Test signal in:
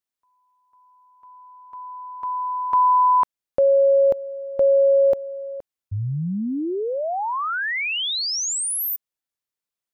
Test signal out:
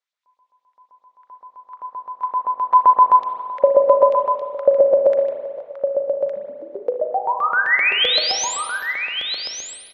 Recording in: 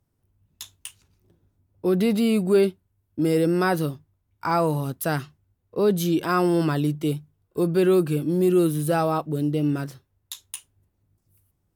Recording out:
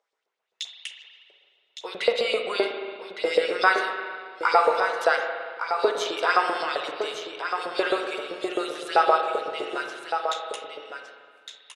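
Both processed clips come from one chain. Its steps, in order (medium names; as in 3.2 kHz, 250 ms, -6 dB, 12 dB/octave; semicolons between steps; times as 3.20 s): cabinet simulation 240–7300 Hz, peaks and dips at 280 Hz -7 dB, 460 Hz +9 dB, 1.4 kHz +3 dB, 2.1 kHz +5 dB, 3.6 kHz +4 dB; LFO high-pass saw up 7.7 Hz 540–4600 Hz; on a send: delay 1161 ms -7.5 dB; on the sum: spring tank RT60 1.9 s, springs 36/56 ms, chirp 40 ms, DRR 4 dB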